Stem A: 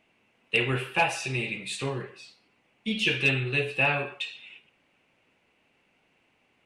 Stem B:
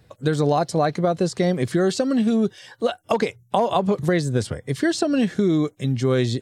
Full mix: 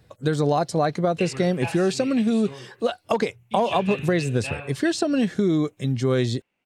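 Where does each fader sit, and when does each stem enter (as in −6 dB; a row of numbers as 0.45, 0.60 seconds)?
−9.5, −1.5 decibels; 0.65, 0.00 seconds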